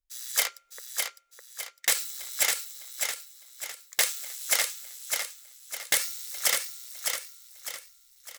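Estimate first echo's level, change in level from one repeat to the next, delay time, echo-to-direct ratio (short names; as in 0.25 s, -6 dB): -4.5 dB, -7.5 dB, 0.606 s, -3.5 dB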